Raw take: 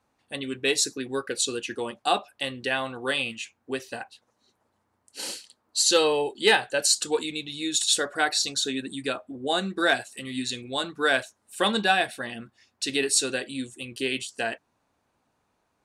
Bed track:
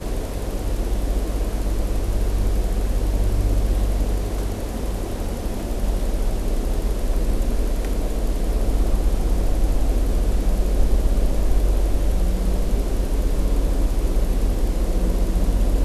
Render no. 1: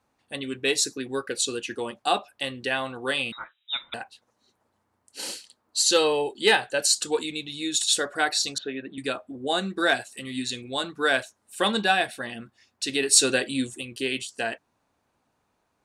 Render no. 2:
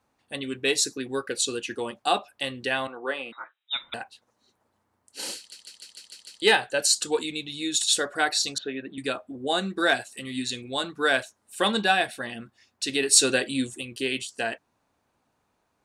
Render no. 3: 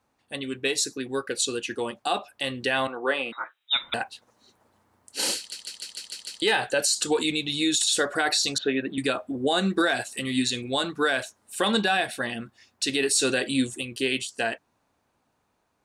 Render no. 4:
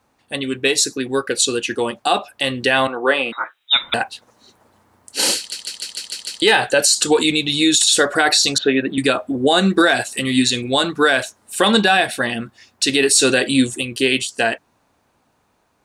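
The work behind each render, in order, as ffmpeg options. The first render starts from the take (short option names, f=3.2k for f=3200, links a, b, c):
-filter_complex "[0:a]asettb=1/sr,asplit=3[a][b][c];[a]atrim=end=3.324[d];[b]atrim=start=3.32:end=3.94,asetpts=PTS-STARTPTS,afade=t=in:d=0.004:c=qsin,afade=t=out:st=0.616:d=0.004:c=qsin,lowpass=f=3.4k:t=q:w=0.5098,lowpass=f=3.4k:t=q:w=0.6013,lowpass=f=3.4k:t=q:w=0.9,lowpass=f=3.4k:t=q:w=2.563,afreqshift=-4000[e];[c]atrim=start=3.936[f];[d][e]acrossfade=d=0.004:c1=hsin:c2=qsin[g];[g][f]acrossfade=d=0.004:c1=qsin:c2=hsin,asettb=1/sr,asplit=3[h][i][j];[h]atrim=end=8.584[k];[i]atrim=start=8.58:end=8.98,asetpts=PTS-STARTPTS,afade=t=in:d=0.004:c=qsin,afade=t=out:st=0.396:d=0.004:c=qsin,highpass=150,equalizer=f=240:t=q:w=4:g=-7,equalizer=f=620:t=q:w=4:g=8,equalizer=f=880:t=q:w=4:g=-5,lowpass=f=2.5k:w=0.5412,lowpass=f=2.5k:w=1.3066[l];[j]atrim=start=8.976[m];[k][l]acrossfade=d=0.004:c1=hsin:c2=qsin[n];[n][m]acrossfade=d=0.004:c1=qsin:c2=hsin,asplit=3[o][p][q];[o]afade=t=out:st=13.11:d=0.02[r];[p]acontrast=42,afade=t=in:st=13.11:d=0.02,afade=t=out:st=13.8:d=0.02[s];[q]afade=t=in:st=13.8:d=0.02[t];[r][s][t]amix=inputs=3:normalize=0"
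-filter_complex "[0:a]asettb=1/sr,asplit=3[a][b][c];[a]atrim=end=2.874[d];[b]atrim=start=2.87:end=3.71,asetpts=PTS-STARTPTS,afade=t=in:d=0.004:c=qsin,afade=t=out:st=0.836:d=0.004:c=qsin,acrossover=split=270 2100:gain=0.0708 1 0.141[e][f][g];[e][f][g]amix=inputs=3:normalize=0[h];[c]atrim=start=3.706[i];[d][h]acrossfade=d=0.004:c1=hsin:c2=qsin[j];[j][i]acrossfade=d=0.004:c1=qsin:c2=hsin,asplit=8[k][l][m][n][o][p][q][r];[k]atrim=end=5.522[s];[l]atrim=start=5.368:end=5.522[t];[m]atrim=start=5.368:end=5.522[u];[n]atrim=start=5.368:end=5.522[v];[o]atrim=start=5.368:end=5.522[w];[p]atrim=start=5.368:end=5.522[x];[q]atrim=start=5.368:end=5.522[y];[r]atrim=start=6.418[z];[s][t]acrossfade=d=0.004:c1=hsin:c2=hsin[aa];[aa][u]acrossfade=d=0.004:c1=hsin:c2=hsin[ab];[ab][v]acrossfade=d=0.004:c1=hsin:c2=hsin[ac];[ac][w]acrossfade=d=0.004:c1=hsin:c2=hsin[ad];[ad][x]acrossfade=d=0.004:c1=hsin:c2=hsin[ae];[ae][y]acrossfade=d=0.004:c1=hsin:c2=hsin[af];[af][z]acrossfade=d=0.004:c1=hsin:c2=hsin"
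-af "dynaudnorm=f=630:g=9:m=11.5dB,alimiter=limit=-13.5dB:level=0:latency=1:release=81"
-af "volume=9dB"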